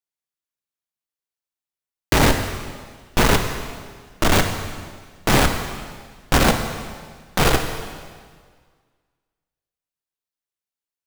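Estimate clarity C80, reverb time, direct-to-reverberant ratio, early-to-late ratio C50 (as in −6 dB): 8.0 dB, 1.7 s, 5.0 dB, 7.0 dB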